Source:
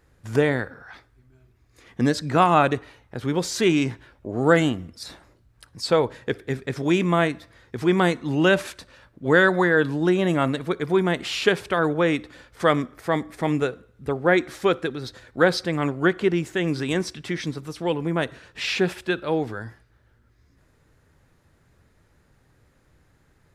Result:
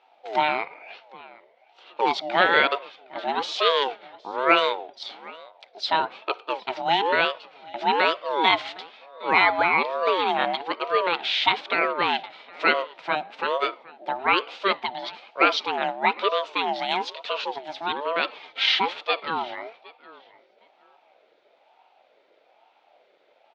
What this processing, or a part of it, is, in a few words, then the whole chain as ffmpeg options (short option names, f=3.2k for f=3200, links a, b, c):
voice changer toy: -filter_complex "[0:a]asettb=1/sr,asplit=3[a][b][c];[a]atrim=end=18.244[d];[b]atrim=start=18.24:end=18.76,asetpts=PTS-STARTPTS,afade=t=in:d=0.004:c=qsin,afade=t=out:st=0.516:d=0.004:c=qsin,aecho=1:1:3.9:0.9,atrim=end_sample=22932[e];[c]atrim=start=18.756[f];[d][e]acrossfade=d=0.004:c1=hsin:c2=qsin[g];[g][f]acrossfade=d=0.004:c1=qsin:c2=hsin,asplit=2[h][i];[i]adelay=763,lowpass=f=4.5k:p=1,volume=-21.5dB,asplit=2[j][k];[k]adelay=763,lowpass=f=4.5k:p=1,volume=0.2[l];[h][j][l]amix=inputs=3:normalize=0,aeval=exprs='val(0)*sin(2*PI*650*n/s+650*0.3/1.1*sin(2*PI*1.1*n/s))':c=same,highpass=570,equalizer=f=1.1k:t=q:w=4:g=-9,equalizer=f=1.8k:t=q:w=4:g=-4,equalizer=f=3.6k:t=q:w=4:g=6,lowpass=f=4.1k:w=0.5412,lowpass=f=4.1k:w=1.3066,volume=6dB"